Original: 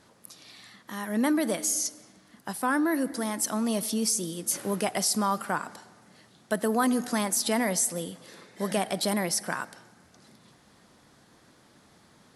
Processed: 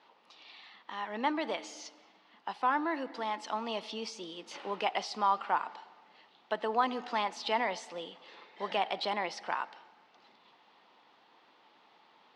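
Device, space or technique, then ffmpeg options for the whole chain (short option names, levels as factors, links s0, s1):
phone earpiece: -af "highpass=500,equalizer=f=590:t=q:w=4:g=-4,equalizer=f=880:t=q:w=4:g=7,equalizer=f=1600:t=q:w=4:g=-6,equalizer=f=2800:t=q:w=4:g=5,lowpass=f=3900:w=0.5412,lowpass=f=3900:w=1.3066,volume=0.841"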